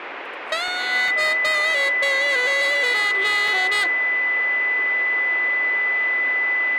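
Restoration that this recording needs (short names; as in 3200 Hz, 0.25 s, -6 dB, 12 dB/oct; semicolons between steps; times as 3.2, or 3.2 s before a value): clip repair -13 dBFS; notch 2000 Hz, Q 30; interpolate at 0.68/1.08/3.48, 2 ms; noise print and reduce 30 dB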